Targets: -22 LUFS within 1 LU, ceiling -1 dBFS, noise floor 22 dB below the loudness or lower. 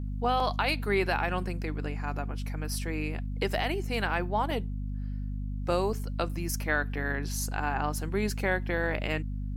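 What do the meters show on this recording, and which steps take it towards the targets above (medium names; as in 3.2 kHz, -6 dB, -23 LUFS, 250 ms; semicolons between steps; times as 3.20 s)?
dropouts 3; longest dropout 2.6 ms; hum 50 Hz; highest harmonic 250 Hz; hum level -31 dBFS; loudness -31.0 LUFS; peak level -14.5 dBFS; loudness target -22.0 LUFS
-> interpolate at 0.40/4.51/5.93 s, 2.6 ms; hum notches 50/100/150/200/250 Hz; trim +9 dB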